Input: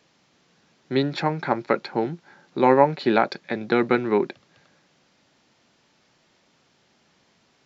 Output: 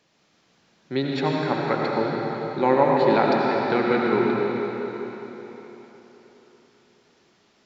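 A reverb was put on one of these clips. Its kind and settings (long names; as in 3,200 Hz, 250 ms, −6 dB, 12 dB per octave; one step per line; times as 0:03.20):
comb and all-pass reverb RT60 4 s, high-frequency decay 0.9×, pre-delay 45 ms, DRR −2.5 dB
level −3.5 dB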